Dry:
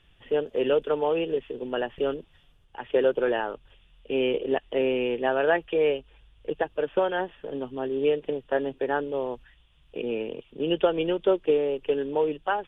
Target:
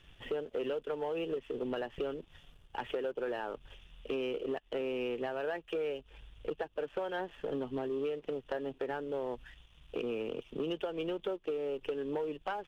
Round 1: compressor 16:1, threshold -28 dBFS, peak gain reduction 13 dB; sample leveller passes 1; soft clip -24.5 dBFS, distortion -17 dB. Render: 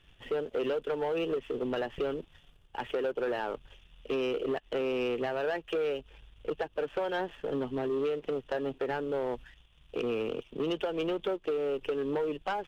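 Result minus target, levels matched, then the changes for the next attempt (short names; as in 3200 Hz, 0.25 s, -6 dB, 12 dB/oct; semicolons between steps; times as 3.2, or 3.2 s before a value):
compressor: peak gain reduction -6 dB
change: compressor 16:1, threshold -34.5 dBFS, peak gain reduction 19 dB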